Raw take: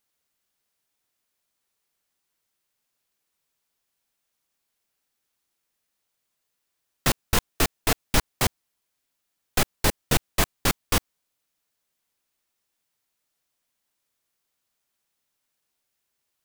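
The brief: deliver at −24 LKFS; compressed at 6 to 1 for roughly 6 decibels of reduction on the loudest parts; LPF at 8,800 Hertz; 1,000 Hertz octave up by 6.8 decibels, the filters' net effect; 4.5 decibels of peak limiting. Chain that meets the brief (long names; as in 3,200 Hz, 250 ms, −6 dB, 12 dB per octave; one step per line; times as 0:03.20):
low-pass filter 8,800 Hz
parametric band 1,000 Hz +8.5 dB
downward compressor 6 to 1, threshold −21 dBFS
level +6.5 dB
brickwall limiter −6.5 dBFS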